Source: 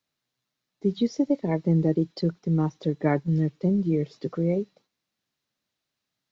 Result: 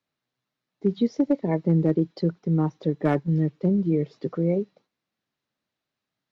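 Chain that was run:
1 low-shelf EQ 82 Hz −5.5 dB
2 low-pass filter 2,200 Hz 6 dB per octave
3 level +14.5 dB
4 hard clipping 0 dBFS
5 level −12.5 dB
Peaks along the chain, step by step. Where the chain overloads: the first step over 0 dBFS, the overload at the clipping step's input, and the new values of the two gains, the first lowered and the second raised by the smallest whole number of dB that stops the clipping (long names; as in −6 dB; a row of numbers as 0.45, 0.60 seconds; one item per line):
−9.5, −10.0, +4.5, 0.0, −12.5 dBFS
step 3, 4.5 dB
step 3 +9.5 dB, step 5 −7.5 dB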